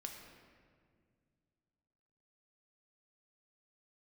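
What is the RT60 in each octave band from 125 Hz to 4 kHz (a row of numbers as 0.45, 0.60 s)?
3.0, 2.8, 2.3, 1.7, 1.6, 1.2 s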